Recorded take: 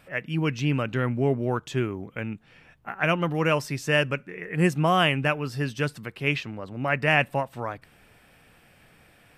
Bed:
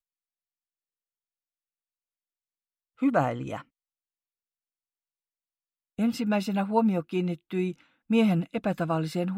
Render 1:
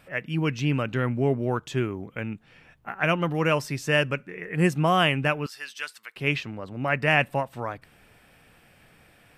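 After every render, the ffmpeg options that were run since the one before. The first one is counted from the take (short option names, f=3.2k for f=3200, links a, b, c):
-filter_complex "[0:a]asettb=1/sr,asplit=3[a][b][c];[a]atrim=end=5.464[d];[b]atrim=start=5.46:end=6.16,asetpts=PTS-STARTPTS,afade=t=in:d=0.004:c=qsin,afade=t=out:st=0.696:d=0.004:c=qsin,highpass=1.4k[e];[c]atrim=start=6.156[f];[d][e]acrossfade=d=0.004:c1=hsin:c2=qsin[g];[g][f]acrossfade=d=0.004:c1=qsin:c2=hsin"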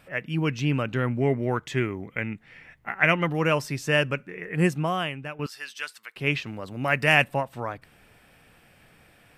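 -filter_complex "[0:a]asettb=1/sr,asplit=3[a][b][c];[a]atrim=end=1.204[d];[b]atrim=start=1.2:end=3.27,asetpts=PTS-STARTPTS,afade=t=in:d=0.004:c=qsin,afade=t=out:st=2.066:d=0.004:c=qsin,equalizer=f=2k:w=4.2:g=13.5[e];[c]atrim=start=3.266[f];[d][e]acrossfade=d=0.004:c1=hsin:c2=qsin[g];[g][f]acrossfade=d=0.004:c1=qsin:c2=hsin,asettb=1/sr,asplit=3[h][i][j];[h]atrim=end=6.464[k];[i]atrim=start=6.46:end=7.24,asetpts=PTS-STARTPTS,afade=t=in:d=0.004:c=qsin,afade=t=out:st=0.776:d=0.004:c=qsin,highshelf=f=4.1k:g=12[l];[j]atrim=start=7.236[m];[k][l]acrossfade=d=0.004:c1=hsin:c2=qsin[n];[n][m]acrossfade=d=0.004:c1=qsin:c2=hsin,asplit=2[o][p];[o]atrim=end=5.39,asetpts=PTS-STARTPTS,afade=t=out:st=4.63:d=0.76:c=qua:silence=0.237137[q];[p]atrim=start=5.39,asetpts=PTS-STARTPTS,afade=t=in:d=0.004:c=hsin:silence=0.237137[r];[q][r]concat=n=2:v=0:a=1"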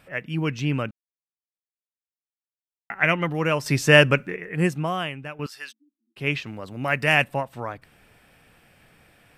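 -filter_complex "[0:a]asplit=3[a][b][c];[a]afade=t=out:st=5.71:d=0.02[d];[b]asuperpass=centerf=270:order=20:qfactor=2.3,afade=t=in:st=5.71:d=0.02,afade=t=out:st=6.16:d=0.02[e];[c]afade=t=in:st=6.16:d=0.02[f];[d][e][f]amix=inputs=3:normalize=0,asplit=5[g][h][i][j][k];[g]atrim=end=0.91,asetpts=PTS-STARTPTS,afade=t=out:st=0.906:d=0.004:c=hsin[l];[h]atrim=start=0.91:end=2.9,asetpts=PTS-STARTPTS,volume=0[m];[i]atrim=start=2.9:end=3.662,asetpts=PTS-STARTPTS,afade=t=in:d=0.004:c=hsin[n];[j]atrim=start=3.658:end=4.362,asetpts=PTS-STARTPTS,volume=8.5dB[o];[k]atrim=start=4.358[p];[l][m][n]concat=n=3:v=0:a=1[q];[q][o]acrossfade=d=0.004:c1=hsin:c2=hsin[r];[r][p]acrossfade=d=0.004:c1=hsin:c2=hsin"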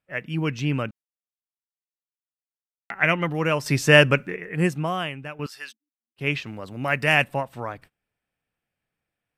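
-af "agate=range=-28dB:threshold=-46dB:ratio=16:detection=peak"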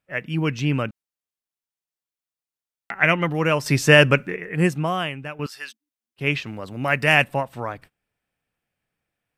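-af "volume=2.5dB,alimiter=limit=-2dB:level=0:latency=1"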